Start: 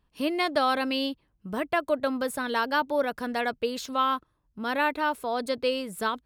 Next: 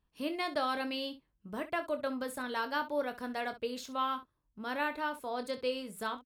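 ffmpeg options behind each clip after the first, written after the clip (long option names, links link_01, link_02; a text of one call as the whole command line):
ffmpeg -i in.wav -af "aecho=1:1:24|65:0.335|0.178,volume=-8.5dB" out.wav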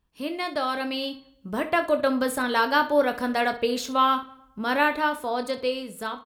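ffmpeg -i in.wav -filter_complex "[0:a]bandreject=frequency=156.2:width_type=h:width=4,bandreject=frequency=312.4:width_type=h:width=4,bandreject=frequency=468.6:width_type=h:width=4,bandreject=frequency=624.8:width_type=h:width=4,bandreject=frequency=781:width_type=h:width=4,bandreject=frequency=937.2:width_type=h:width=4,bandreject=frequency=1093.4:width_type=h:width=4,bandreject=frequency=1249.6:width_type=h:width=4,bandreject=frequency=1405.8:width_type=h:width=4,bandreject=frequency=1562:width_type=h:width=4,bandreject=frequency=1718.2:width_type=h:width=4,bandreject=frequency=1874.4:width_type=h:width=4,bandreject=frequency=2030.6:width_type=h:width=4,bandreject=frequency=2186.8:width_type=h:width=4,bandreject=frequency=2343:width_type=h:width=4,bandreject=frequency=2499.2:width_type=h:width=4,bandreject=frequency=2655.4:width_type=h:width=4,bandreject=frequency=2811.6:width_type=h:width=4,bandreject=frequency=2967.8:width_type=h:width=4,bandreject=frequency=3124:width_type=h:width=4,bandreject=frequency=3280.2:width_type=h:width=4,bandreject=frequency=3436.4:width_type=h:width=4,bandreject=frequency=3592.6:width_type=h:width=4,bandreject=frequency=3748.8:width_type=h:width=4,bandreject=frequency=3905:width_type=h:width=4,bandreject=frequency=4061.2:width_type=h:width=4,bandreject=frequency=4217.4:width_type=h:width=4,bandreject=frequency=4373.6:width_type=h:width=4,bandreject=frequency=4529.8:width_type=h:width=4,dynaudnorm=framelen=370:gausssize=7:maxgain=7.5dB,asplit=2[link_01][link_02];[link_02]adelay=110,lowpass=frequency=2500:poles=1,volume=-21dB,asplit=2[link_03][link_04];[link_04]adelay=110,lowpass=frequency=2500:poles=1,volume=0.49,asplit=2[link_05][link_06];[link_06]adelay=110,lowpass=frequency=2500:poles=1,volume=0.49,asplit=2[link_07][link_08];[link_08]adelay=110,lowpass=frequency=2500:poles=1,volume=0.49[link_09];[link_01][link_03][link_05][link_07][link_09]amix=inputs=5:normalize=0,volume=5dB" out.wav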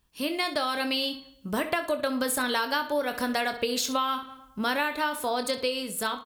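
ffmpeg -i in.wav -af "highshelf=frequency=2700:gain=10,acompressor=threshold=-25dB:ratio=10,volume=1.5dB" out.wav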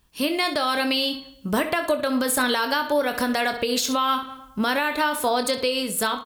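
ffmpeg -i in.wav -af "alimiter=limit=-19dB:level=0:latency=1:release=117,volume=7dB" out.wav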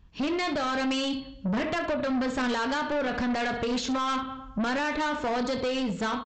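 ffmpeg -i in.wav -af "bass=frequency=250:gain=10,treble=frequency=4000:gain=-11,aresample=16000,asoftclip=type=tanh:threshold=-24.5dB,aresample=44100" out.wav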